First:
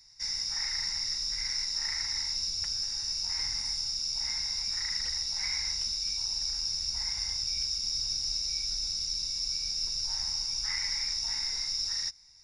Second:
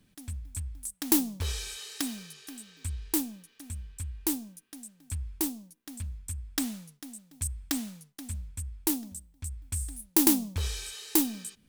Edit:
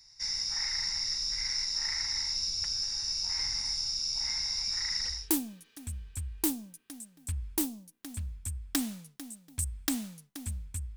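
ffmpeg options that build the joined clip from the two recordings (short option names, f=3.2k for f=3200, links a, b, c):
-filter_complex "[0:a]apad=whole_dur=10.96,atrim=end=10.96,atrim=end=5.29,asetpts=PTS-STARTPTS[a];[1:a]atrim=start=2.88:end=8.79,asetpts=PTS-STARTPTS[b];[a][b]acrossfade=d=0.24:c1=tri:c2=tri"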